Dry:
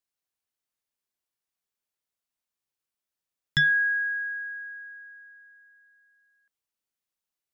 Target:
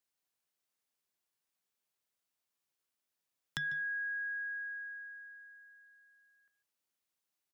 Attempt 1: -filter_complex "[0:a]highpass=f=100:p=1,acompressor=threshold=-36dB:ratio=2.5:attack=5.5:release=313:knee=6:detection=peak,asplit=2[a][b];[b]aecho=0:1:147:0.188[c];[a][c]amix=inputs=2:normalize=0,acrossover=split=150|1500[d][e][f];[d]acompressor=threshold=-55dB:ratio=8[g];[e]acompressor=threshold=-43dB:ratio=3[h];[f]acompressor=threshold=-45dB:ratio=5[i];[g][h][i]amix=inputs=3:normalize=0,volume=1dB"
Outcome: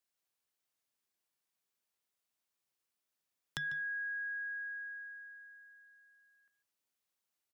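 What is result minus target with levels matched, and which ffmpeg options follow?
compressor: peak gain reduction +5.5 dB
-filter_complex "[0:a]highpass=f=100:p=1,acompressor=threshold=-27dB:ratio=2.5:attack=5.5:release=313:knee=6:detection=peak,asplit=2[a][b];[b]aecho=0:1:147:0.188[c];[a][c]amix=inputs=2:normalize=0,acrossover=split=150|1500[d][e][f];[d]acompressor=threshold=-55dB:ratio=8[g];[e]acompressor=threshold=-43dB:ratio=3[h];[f]acompressor=threshold=-45dB:ratio=5[i];[g][h][i]amix=inputs=3:normalize=0,volume=1dB"

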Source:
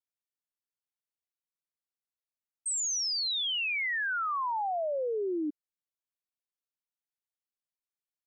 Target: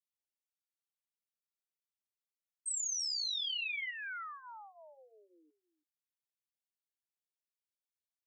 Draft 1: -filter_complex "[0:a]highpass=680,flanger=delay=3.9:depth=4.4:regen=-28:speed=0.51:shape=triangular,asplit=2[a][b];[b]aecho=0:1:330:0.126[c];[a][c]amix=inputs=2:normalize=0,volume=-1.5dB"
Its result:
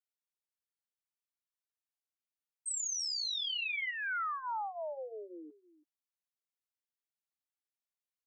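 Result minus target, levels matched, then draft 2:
500 Hz band +17.5 dB
-filter_complex "[0:a]highpass=2.1k,flanger=delay=3.9:depth=4.4:regen=-28:speed=0.51:shape=triangular,asplit=2[a][b];[b]aecho=0:1:330:0.126[c];[a][c]amix=inputs=2:normalize=0,volume=-1.5dB"

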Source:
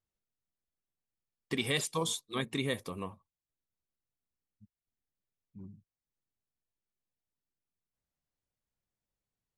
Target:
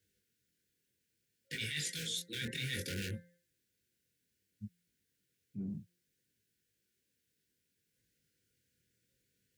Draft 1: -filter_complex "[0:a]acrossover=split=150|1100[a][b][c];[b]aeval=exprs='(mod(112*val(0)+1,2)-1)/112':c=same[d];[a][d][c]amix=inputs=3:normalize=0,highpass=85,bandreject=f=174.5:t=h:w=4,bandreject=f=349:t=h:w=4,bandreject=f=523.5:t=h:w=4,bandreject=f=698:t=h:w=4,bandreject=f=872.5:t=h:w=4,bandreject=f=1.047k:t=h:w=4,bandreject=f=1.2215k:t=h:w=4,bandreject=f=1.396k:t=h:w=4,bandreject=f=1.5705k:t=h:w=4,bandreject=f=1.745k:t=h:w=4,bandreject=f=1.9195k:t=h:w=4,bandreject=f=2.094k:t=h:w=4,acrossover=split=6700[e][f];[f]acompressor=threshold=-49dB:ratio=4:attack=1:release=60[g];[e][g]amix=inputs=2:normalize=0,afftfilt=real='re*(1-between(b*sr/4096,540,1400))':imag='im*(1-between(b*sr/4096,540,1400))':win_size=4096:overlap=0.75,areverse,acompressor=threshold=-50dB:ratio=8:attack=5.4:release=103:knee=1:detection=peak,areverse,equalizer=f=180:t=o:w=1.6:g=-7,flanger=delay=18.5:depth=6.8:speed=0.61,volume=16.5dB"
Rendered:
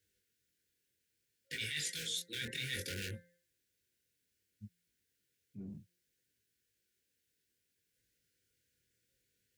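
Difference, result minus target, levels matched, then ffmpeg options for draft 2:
250 Hz band -5.5 dB
-filter_complex "[0:a]acrossover=split=150|1100[a][b][c];[b]aeval=exprs='(mod(112*val(0)+1,2)-1)/112':c=same[d];[a][d][c]amix=inputs=3:normalize=0,highpass=85,bandreject=f=174.5:t=h:w=4,bandreject=f=349:t=h:w=4,bandreject=f=523.5:t=h:w=4,bandreject=f=698:t=h:w=4,bandreject=f=872.5:t=h:w=4,bandreject=f=1.047k:t=h:w=4,bandreject=f=1.2215k:t=h:w=4,bandreject=f=1.396k:t=h:w=4,bandreject=f=1.5705k:t=h:w=4,bandreject=f=1.745k:t=h:w=4,bandreject=f=1.9195k:t=h:w=4,bandreject=f=2.094k:t=h:w=4,acrossover=split=6700[e][f];[f]acompressor=threshold=-49dB:ratio=4:attack=1:release=60[g];[e][g]amix=inputs=2:normalize=0,afftfilt=real='re*(1-between(b*sr/4096,540,1400))':imag='im*(1-between(b*sr/4096,540,1400))':win_size=4096:overlap=0.75,areverse,acompressor=threshold=-50dB:ratio=8:attack=5.4:release=103:knee=1:detection=peak,areverse,flanger=delay=18.5:depth=6.8:speed=0.61,volume=16.5dB"

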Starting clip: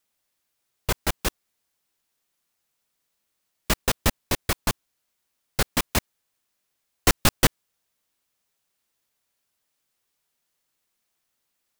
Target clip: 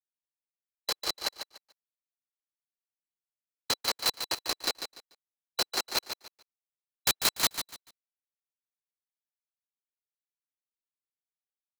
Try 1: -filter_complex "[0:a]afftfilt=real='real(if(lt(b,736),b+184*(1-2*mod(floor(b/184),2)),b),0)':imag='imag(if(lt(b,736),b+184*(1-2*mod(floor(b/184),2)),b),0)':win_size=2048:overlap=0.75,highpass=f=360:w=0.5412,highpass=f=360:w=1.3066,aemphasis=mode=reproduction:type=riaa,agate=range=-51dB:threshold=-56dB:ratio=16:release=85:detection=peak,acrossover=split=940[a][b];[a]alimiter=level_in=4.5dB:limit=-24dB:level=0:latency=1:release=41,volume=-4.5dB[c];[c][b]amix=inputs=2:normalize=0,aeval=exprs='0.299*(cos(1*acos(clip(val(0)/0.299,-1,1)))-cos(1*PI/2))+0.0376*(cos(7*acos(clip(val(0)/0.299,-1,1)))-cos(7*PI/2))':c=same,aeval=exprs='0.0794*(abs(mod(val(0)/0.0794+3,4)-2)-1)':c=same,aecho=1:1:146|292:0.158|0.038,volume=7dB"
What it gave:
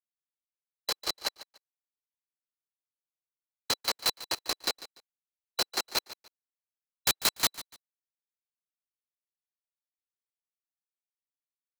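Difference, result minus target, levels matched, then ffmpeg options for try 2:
echo-to-direct -7.5 dB
-filter_complex "[0:a]afftfilt=real='real(if(lt(b,736),b+184*(1-2*mod(floor(b/184),2)),b),0)':imag='imag(if(lt(b,736),b+184*(1-2*mod(floor(b/184),2)),b),0)':win_size=2048:overlap=0.75,highpass=f=360:w=0.5412,highpass=f=360:w=1.3066,aemphasis=mode=reproduction:type=riaa,agate=range=-51dB:threshold=-56dB:ratio=16:release=85:detection=peak,acrossover=split=940[a][b];[a]alimiter=level_in=4.5dB:limit=-24dB:level=0:latency=1:release=41,volume=-4.5dB[c];[c][b]amix=inputs=2:normalize=0,aeval=exprs='0.299*(cos(1*acos(clip(val(0)/0.299,-1,1)))-cos(1*PI/2))+0.0376*(cos(7*acos(clip(val(0)/0.299,-1,1)))-cos(7*PI/2))':c=same,aeval=exprs='0.0794*(abs(mod(val(0)/0.0794+3,4)-2)-1)':c=same,aecho=1:1:146|292|438:0.376|0.0902|0.0216,volume=7dB"

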